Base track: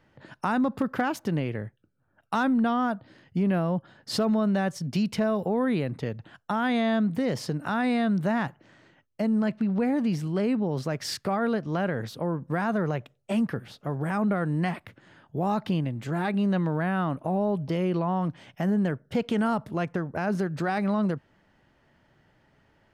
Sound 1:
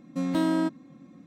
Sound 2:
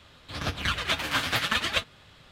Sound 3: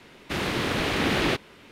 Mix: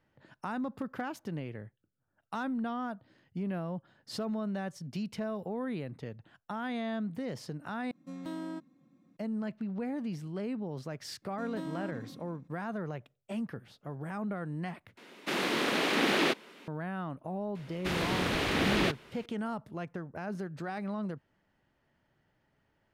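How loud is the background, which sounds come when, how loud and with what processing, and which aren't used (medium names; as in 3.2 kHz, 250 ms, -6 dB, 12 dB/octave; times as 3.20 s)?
base track -10.5 dB
7.91 s: replace with 1 -14.5 dB
11.22 s: add 1 -15.5 dB + decay stretcher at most 39 dB/s
14.97 s: replace with 3 -2.5 dB + high-pass 200 Hz 24 dB/octave
17.55 s: add 3 -4.5 dB
not used: 2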